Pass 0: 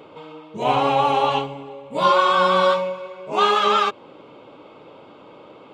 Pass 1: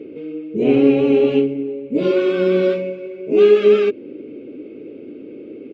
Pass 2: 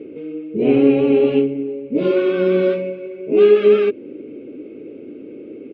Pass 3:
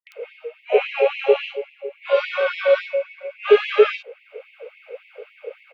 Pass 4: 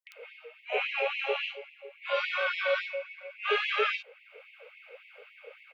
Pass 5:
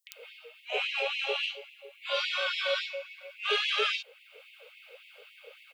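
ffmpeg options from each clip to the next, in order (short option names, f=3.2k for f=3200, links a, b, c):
-af "firequalizer=gain_entry='entry(170,0);entry(250,13);entry(410,11);entry(590,-7);entry(960,-30);entry(1500,-11);entry(2400,-1);entry(3400,-15);entry(4800,-12);entry(8700,-21)':delay=0.05:min_phase=1,volume=3dB"
-af "lowpass=3.4k"
-filter_complex "[0:a]acompressor=mode=upward:threshold=-24dB:ratio=2.5,acrossover=split=200|3400[a][b][c];[b]adelay=70[d];[c]adelay=120[e];[a][d][e]amix=inputs=3:normalize=0,afftfilt=real='re*gte(b*sr/1024,400*pow(1900/400,0.5+0.5*sin(2*PI*3.6*pts/sr)))':imag='im*gte(b*sr/1024,400*pow(1900/400,0.5+0.5*sin(2*PI*3.6*pts/sr)))':win_size=1024:overlap=0.75,volume=7.5dB"
-af "highpass=1k,volume=-3dB"
-af "aexciter=amount=2.9:drive=8.9:freq=3.1k,volume=-3dB"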